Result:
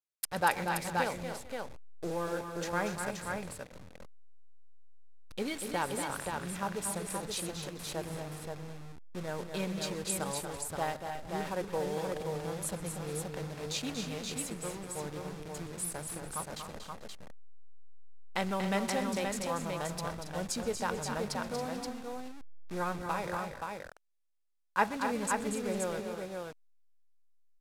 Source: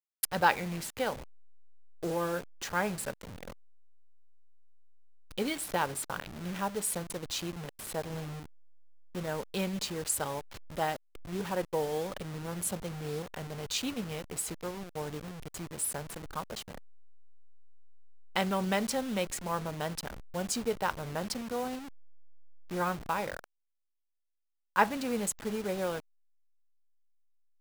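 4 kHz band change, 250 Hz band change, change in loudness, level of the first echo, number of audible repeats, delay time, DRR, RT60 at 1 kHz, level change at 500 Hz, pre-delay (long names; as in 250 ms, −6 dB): −1.5 dB, −1.0 dB, −1.5 dB, −19.5 dB, 5, 127 ms, no reverb audible, no reverb audible, −1.0 dB, no reverb audible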